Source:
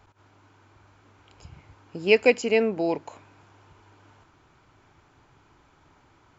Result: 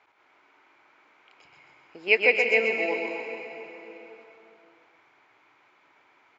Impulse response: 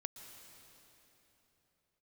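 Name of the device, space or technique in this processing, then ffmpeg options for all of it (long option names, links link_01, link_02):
station announcement: -filter_complex "[0:a]highpass=440,lowpass=4500,equalizer=frequency=2200:width_type=o:width=0.48:gain=10,aecho=1:1:125.4|265.3:0.562|0.316[link_01];[1:a]atrim=start_sample=2205[link_02];[link_01][link_02]afir=irnorm=-1:irlink=0"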